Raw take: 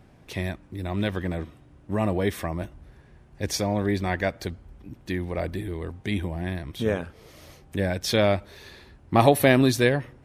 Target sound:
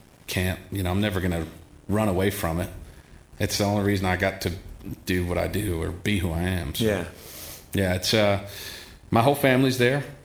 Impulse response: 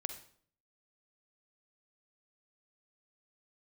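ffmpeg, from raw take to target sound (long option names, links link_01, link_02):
-filter_complex "[0:a]acrossover=split=3600[link_01][link_02];[link_02]acompressor=threshold=-45dB:ratio=4:attack=1:release=60[link_03];[link_01][link_03]amix=inputs=2:normalize=0,highshelf=frequency=6700:gain=9,acompressor=threshold=-30dB:ratio=2,aeval=exprs='sgn(val(0))*max(abs(val(0))-0.00168,0)':channel_layout=same,asplit=2[link_04][link_05];[1:a]atrim=start_sample=2205,highshelf=frequency=2900:gain=10.5[link_06];[link_05][link_06]afir=irnorm=-1:irlink=0,volume=0.5dB[link_07];[link_04][link_07]amix=inputs=2:normalize=0,volume=1.5dB"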